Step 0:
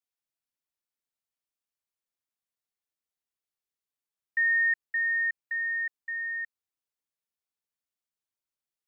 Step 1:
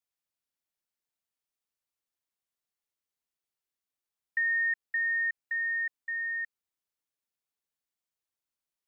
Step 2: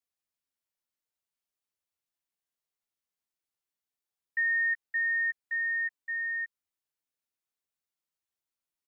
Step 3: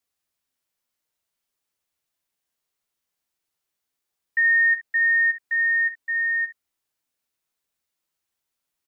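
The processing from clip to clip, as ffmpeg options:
-af "acompressor=threshold=-27dB:ratio=3"
-filter_complex "[0:a]asplit=2[a][b];[b]adelay=12,volume=-5.5dB[c];[a][c]amix=inputs=2:normalize=0,volume=-3dB"
-af "aecho=1:1:48|63:0.335|0.282,volume=8dB"

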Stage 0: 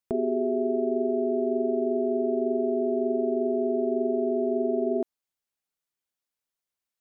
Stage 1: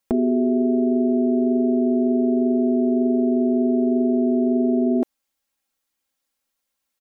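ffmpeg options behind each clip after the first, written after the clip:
-af "aecho=1:1:3.7:0.68,volume=8dB"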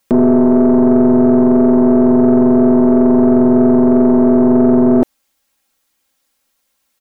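-filter_complex "[0:a]asplit=2[a][b];[b]alimiter=limit=-17dB:level=0:latency=1,volume=-1dB[c];[a][c]amix=inputs=2:normalize=0,aeval=exprs='(tanh(3.98*val(0)+0.45)-tanh(0.45))/3.98':c=same,volume=8.5dB"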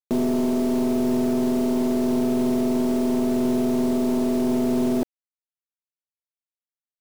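-af "alimiter=limit=-7dB:level=0:latency=1:release=28,acrusher=bits=4:mix=0:aa=0.000001,volume=-8dB"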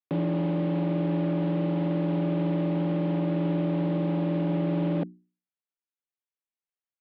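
-af "highpass=f=250:t=q:w=0.5412,highpass=f=250:t=q:w=1.307,lowpass=f=3.4k:t=q:w=0.5176,lowpass=f=3.4k:t=q:w=0.7071,lowpass=f=3.4k:t=q:w=1.932,afreqshift=-78,bandreject=f=60:t=h:w=6,bandreject=f=120:t=h:w=6,bandreject=f=180:t=h:w=6,bandreject=f=240:t=h:w=6,bandreject=f=300:t=h:w=6,bandreject=f=360:t=h:w=6,volume=-2dB"

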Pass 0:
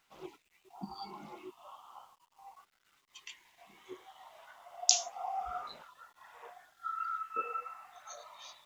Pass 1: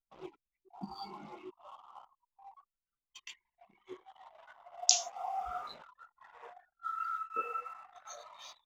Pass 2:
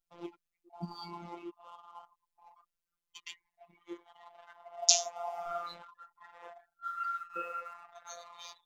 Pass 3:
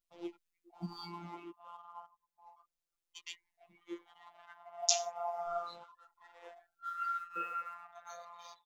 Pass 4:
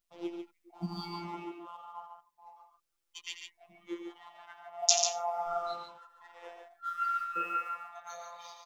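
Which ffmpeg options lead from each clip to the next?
-af "anlmdn=0.000398"
-af "afftfilt=real='hypot(re,im)*cos(PI*b)':imag='0':win_size=1024:overlap=0.75,volume=5.5dB"
-filter_complex "[0:a]asplit=2[a][b];[b]adelay=11.5,afreqshift=-0.32[c];[a][c]amix=inputs=2:normalize=1,volume=1.5dB"
-af "aecho=1:1:87.46|142.9:0.316|0.501,volume=4.5dB"

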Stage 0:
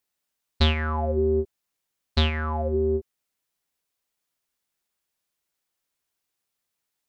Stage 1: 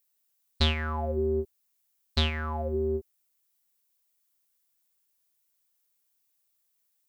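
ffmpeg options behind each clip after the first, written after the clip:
-af "aemphasis=mode=production:type=50kf,volume=-5dB"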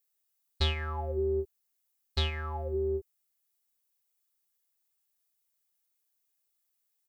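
-af "aecho=1:1:2.4:0.69,volume=-6dB"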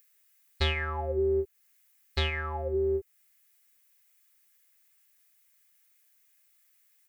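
-filter_complex "[0:a]equalizer=f=500:t=o:w=1:g=5,equalizer=f=2k:t=o:w=1:g=9,equalizer=f=4k:t=o:w=1:g=-3,acrossover=split=1200[a][b];[b]acompressor=mode=upward:threshold=-54dB:ratio=2.5[c];[a][c]amix=inputs=2:normalize=0"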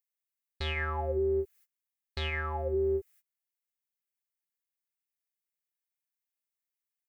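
-af "agate=range=-25dB:threshold=-55dB:ratio=16:detection=peak,alimiter=limit=-22.5dB:level=0:latency=1:release=134"

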